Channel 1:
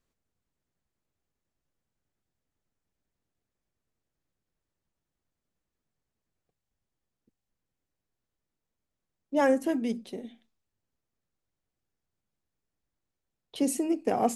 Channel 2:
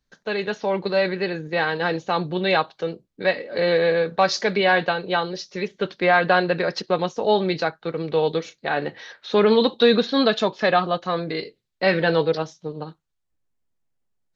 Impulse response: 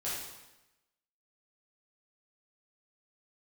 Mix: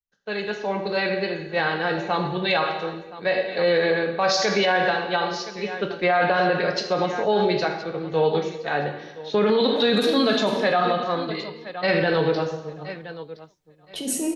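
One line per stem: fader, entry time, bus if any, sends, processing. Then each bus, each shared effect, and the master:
0.0 dB, 0.40 s, send −3.5 dB, no echo send, compressor whose output falls as the input rises −31 dBFS, ratio −1
−1.5 dB, 0.00 s, send −5 dB, echo send −15.5 dB, multiband upward and downward expander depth 70%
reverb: on, RT60 1.0 s, pre-delay 5 ms
echo: repeating echo 1,019 ms, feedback 19%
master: brickwall limiter −11.5 dBFS, peak gain reduction 11 dB

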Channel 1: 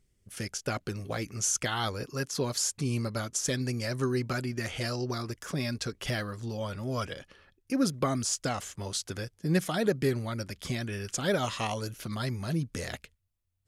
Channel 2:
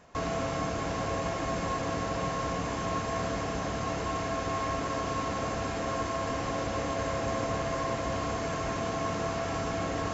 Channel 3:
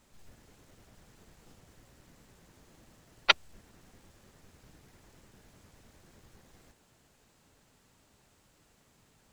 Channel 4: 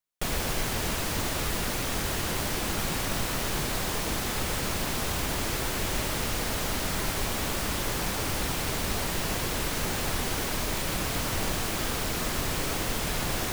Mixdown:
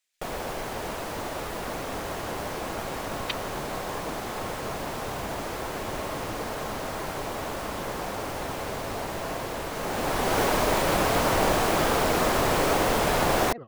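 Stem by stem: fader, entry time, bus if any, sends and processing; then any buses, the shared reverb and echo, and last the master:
−11.0 dB, 2.25 s, no send, low-pass filter 1,500 Hz 12 dB per octave; amplitude tremolo 19 Hz, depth 55%; pitch modulation by a square or saw wave square 4.9 Hz, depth 250 cents
−10.5 dB, 1.50 s, no send, no processing
−9.5 dB, 0.00 s, no send, inverse Chebyshev high-pass filter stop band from 930 Hz, stop band 40 dB
0:09.71 −10 dB → 0:10.40 0 dB, 0.00 s, no send, parametric band 670 Hz +13 dB 2.7 octaves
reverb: not used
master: no processing

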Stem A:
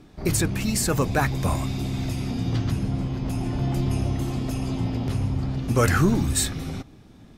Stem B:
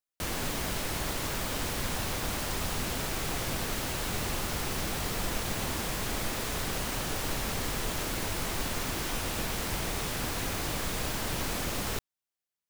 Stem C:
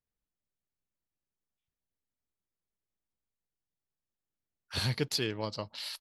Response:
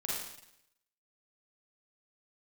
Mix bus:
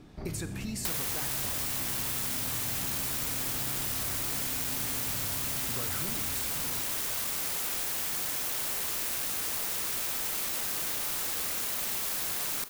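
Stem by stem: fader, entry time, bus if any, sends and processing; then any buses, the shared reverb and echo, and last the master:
−4.0 dB, 0.00 s, send −11.5 dB, downward compressor 2.5 to 1, threshold −35 dBFS, peak gain reduction 13.5 dB
0.0 dB, 0.65 s, send −15 dB, flat-topped bell 670 Hz +13.5 dB 1.2 octaves; wrap-around overflow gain 27.5 dB; high-shelf EQ 7,100 Hz +8.5 dB
muted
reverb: on, RT60 0.80 s, pre-delay 37 ms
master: downward compressor, threshold −29 dBFS, peak gain reduction 7.5 dB

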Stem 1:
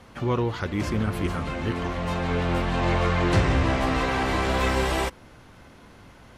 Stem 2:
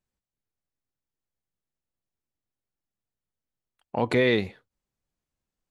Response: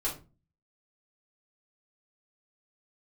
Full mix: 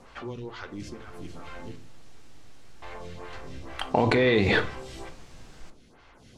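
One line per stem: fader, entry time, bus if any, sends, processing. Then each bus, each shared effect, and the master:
−1.5 dB, 0.00 s, muted 0:01.76–0:02.82, send −16 dB, downward compressor 6 to 1, threshold −29 dBFS, peak gain reduction 12.5 dB; high-shelf EQ 4,100 Hz +11 dB; phaser with staggered stages 2.2 Hz; automatic ducking −9 dB, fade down 1.30 s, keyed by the second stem
0:00.69 −16 dB → 0:01.23 −4.5 dB, 0.00 s, send −10 dB, envelope flattener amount 100%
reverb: on, RT60 0.30 s, pre-delay 3 ms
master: low-pass filter 6,400 Hz 12 dB per octave

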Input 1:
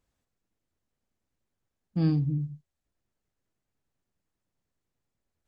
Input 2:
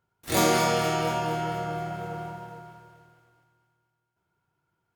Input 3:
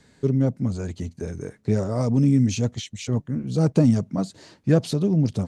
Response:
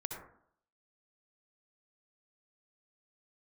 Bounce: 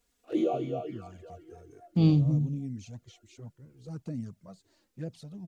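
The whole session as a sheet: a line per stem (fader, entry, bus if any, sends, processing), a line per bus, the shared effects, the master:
+3.0 dB, 0.00 s, no send, high-shelf EQ 2,200 Hz +11 dB
−1.5 dB, 0.00 s, no send, parametric band 360 Hz +13.5 dB 2.4 octaves; formant filter swept between two vowels a-i 3.8 Hz; automatic ducking −23 dB, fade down 1.85 s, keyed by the first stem
−18.5 dB, 0.30 s, no send, no processing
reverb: not used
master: flanger swept by the level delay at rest 4.3 ms, full sweep at −29.5 dBFS

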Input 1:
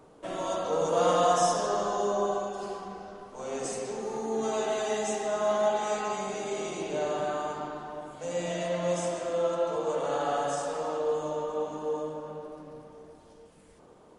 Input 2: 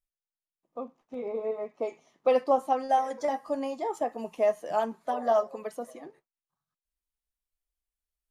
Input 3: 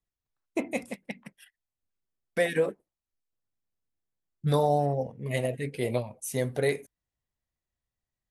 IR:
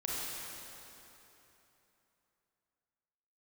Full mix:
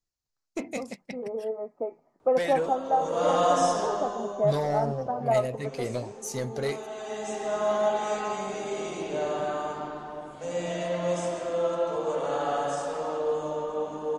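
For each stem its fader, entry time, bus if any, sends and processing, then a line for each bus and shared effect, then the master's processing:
+1.0 dB, 2.20 s, no send, automatic ducking −10 dB, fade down 0.65 s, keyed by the third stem
0.0 dB, 0.00 s, no send, low-pass filter 1,400 Hz 24 dB per octave; notch filter 1,100 Hz, Q 6.5
−1.5 dB, 0.00 s, no send, flat-topped bell 5,600 Hz +11.5 dB 1 octave; soft clipping −20.5 dBFS, distortion −15 dB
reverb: not used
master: high-shelf EQ 6,000 Hz −5.5 dB

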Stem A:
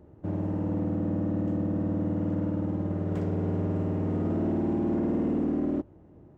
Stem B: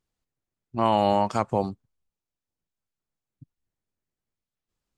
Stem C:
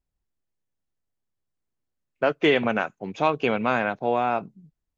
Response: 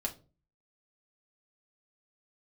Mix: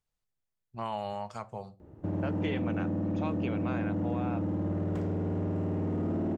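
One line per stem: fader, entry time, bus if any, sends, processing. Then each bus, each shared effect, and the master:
0.0 dB, 1.80 s, no send, automatic gain control gain up to 11.5 dB; brickwall limiter −18.5 dBFS, peak gain reduction 10.5 dB
−6.0 dB, 0.00 s, send −16.5 dB, parametric band 290 Hz −13.5 dB 0.63 octaves; automatic ducking −18 dB, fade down 1.95 s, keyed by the third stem
−9.0 dB, 0.00 s, no send, no processing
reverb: on, RT60 0.35 s, pre-delay 5 ms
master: downward compressor 2.5 to 1, threshold −31 dBFS, peak gain reduction 8 dB

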